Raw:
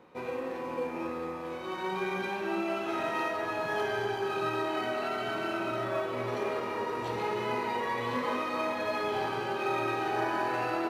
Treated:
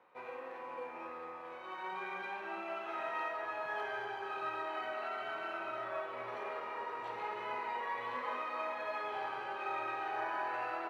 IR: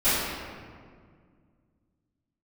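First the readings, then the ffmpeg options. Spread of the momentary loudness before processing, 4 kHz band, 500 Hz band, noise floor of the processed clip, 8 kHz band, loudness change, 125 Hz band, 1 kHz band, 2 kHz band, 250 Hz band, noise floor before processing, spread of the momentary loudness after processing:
5 LU, −10.5 dB, −10.5 dB, −47 dBFS, below −15 dB, −7.5 dB, −21.5 dB, −5.5 dB, −6.0 dB, −17.5 dB, −38 dBFS, 7 LU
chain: -filter_complex "[0:a]acrossover=split=560 2900:gain=0.141 1 0.2[link_01][link_02][link_03];[link_01][link_02][link_03]amix=inputs=3:normalize=0,volume=-4.5dB"

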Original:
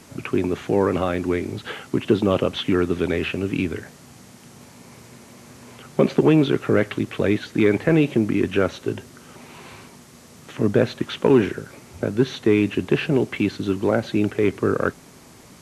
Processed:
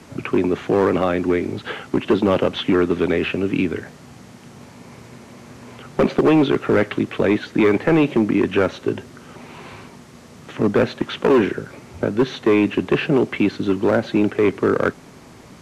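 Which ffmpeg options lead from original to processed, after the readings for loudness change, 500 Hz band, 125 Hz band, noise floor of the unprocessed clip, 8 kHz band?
+2.0 dB, +2.5 dB, −1.5 dB, −47 dBFS, can't be measured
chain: -filter_complex "[0:a]lowpass=frequency=3200:poles=1,acrossover=split=150|1700[link_01][link_02][link_03];[link_01]acompressor=threshold=-40dB:ratio=6[link_04];[link_02]asoftclip=type=hard:threshold=-15dB[link_05];[link_04][link_05][link_03]amix=inputs=3:normalize=0,volume=4.5dB"

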